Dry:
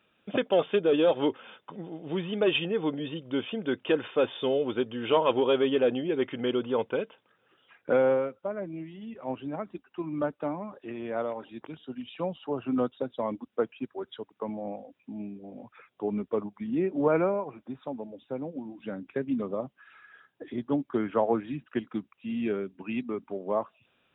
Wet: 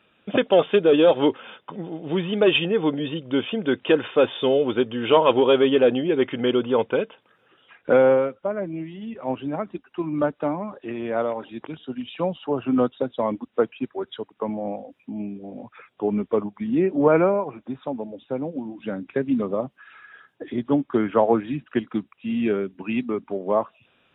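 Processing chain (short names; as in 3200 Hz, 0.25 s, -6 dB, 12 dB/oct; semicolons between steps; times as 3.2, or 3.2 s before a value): gain +7 dB; WMA 64 kbps 32000 Hz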